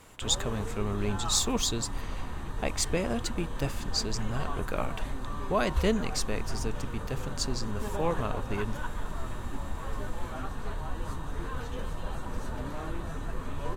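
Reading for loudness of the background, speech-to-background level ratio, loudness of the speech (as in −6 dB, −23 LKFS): −38.0 LKFS, 6.0 dB, −32.0 LKFS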